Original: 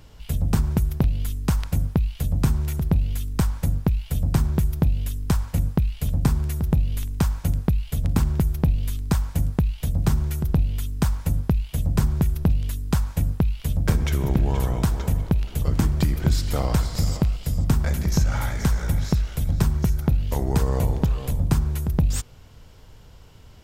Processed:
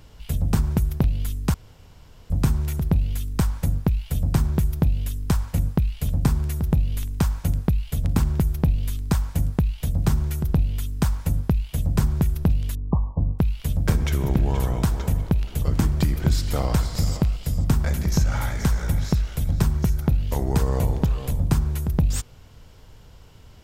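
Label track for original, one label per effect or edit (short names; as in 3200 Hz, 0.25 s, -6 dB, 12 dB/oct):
1.540000	2.300000	room tone
12.750000	13.390000	brick-wall FIR low-pass 1200 Hz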